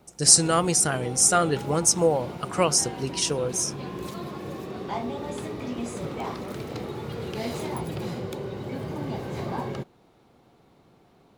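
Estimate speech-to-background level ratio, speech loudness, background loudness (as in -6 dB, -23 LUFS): 13.0 dB, -21.5 LUFS, -34.5 LUFS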